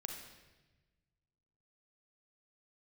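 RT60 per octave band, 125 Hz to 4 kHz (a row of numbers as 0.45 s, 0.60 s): 2.1 s, 1.7 s, 1.3 s, 1.0 s, 1.2 s, 1.1 s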